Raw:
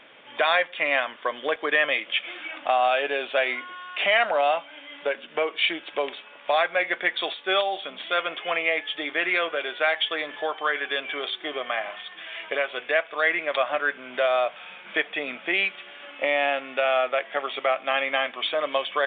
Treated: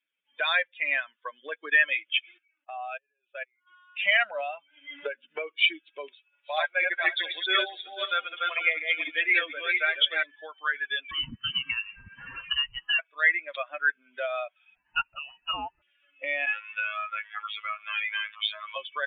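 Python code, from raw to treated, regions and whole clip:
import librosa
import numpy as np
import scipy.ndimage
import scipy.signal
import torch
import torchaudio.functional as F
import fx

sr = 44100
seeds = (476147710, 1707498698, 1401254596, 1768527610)

y = fx.chain(x, sr, fx.level_steps(step_db=24),
    fx.bandpass_edges(low_hz=280.0, high_hz=3000.0), at=(2.38, 3.67))
y = fx.chain(y, sr, fx.air_absorb(metres=69.0),
    fx.band_squash(depth_pct=100), at=(4.4, 5.46))
y = fx.chain(y, sr, fx.reverse_delay_fb(ms=247, feedback_pct=46, wet_db=-1.0),
    fx.highpass(hz=250.0, slope=24),
    fx.echo_single(ms=302, db=-21.0), at=(6.08, 10.23))
y = fx.chain(y, sr, fx.freq_invert(carrier_hz=3400),
    fx.band_squash(depth_pct=100), at=(11.11, 12.99))
y = fx.chain(y, sr, fx.freq_invert(carrier_hz=3200),
    fx.air_absorb(metres=65.0), at=(14.75, 15.82))
y = fx.chain(y, sr, fx.low_shelf_res(hz=710.0, db=-10.5, q=1.5),
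    fx.robotise(hz=106.0),
    fx.env_flatten(amount_pct=50), at=(16.46, 18.76))
y = fx.bin_expand(y, sr, power=2.0)
y = fx.band_shelf(y, sr, hz=2300.0, db=11.0, octaves=1.7)
y = y * 10.0 ** (-6.5 / 20.0)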